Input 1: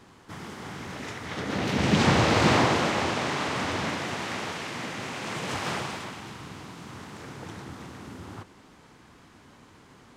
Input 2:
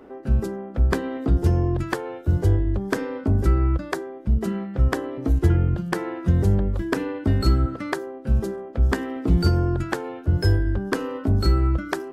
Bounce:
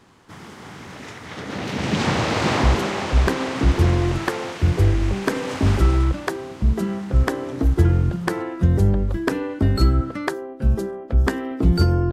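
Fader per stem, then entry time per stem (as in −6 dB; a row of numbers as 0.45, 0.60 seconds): 0.0, +2.0 decibels; 0.00, 2.35 seconds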